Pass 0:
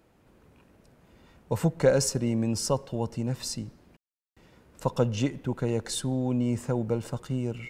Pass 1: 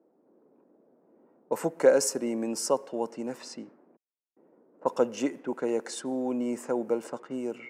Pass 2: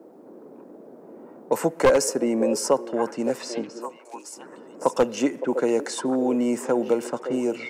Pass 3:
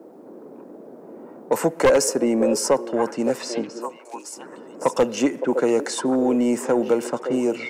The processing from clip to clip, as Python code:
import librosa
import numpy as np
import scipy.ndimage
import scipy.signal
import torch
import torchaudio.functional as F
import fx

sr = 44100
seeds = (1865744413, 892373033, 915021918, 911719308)

y1 = fx.env_lowpass(x, sr, base_hz=520.0, full_db=-25.0)
y1 = scipy.signal.sosfilt(scipy.signal.butter(4, 270.0, 'highpass', fs=sr, output='sos'), y1)
y1 = fx.peak_eq(y1, sr, hz=3700.0, db=-10.5, octaves=0.91)
y1 = y1 * librosa.db_to_amplitude(2.0)
y2 = np.minimum(y1, 2.0 * 10.0 ** (-16.5 / 20.0) - y1)
y2 = fx.echo_stepped(y2, sr, ms=563, hz=460.0, octaves=1.4, feedback_pct=70, wet_db=-10.0)
y2 = fx.band_squash(y2, sr, depth_pct=40)
y2 = y2 * librosa.db_to_amplitude(6.5)
y3 = 10.0 ** (-11.5 / 20.0) * np.tanh(y2 / 10.0 ** (-11.5 / 20.0))
y3 = y3 * librosa.db_to_amplitude(3.5)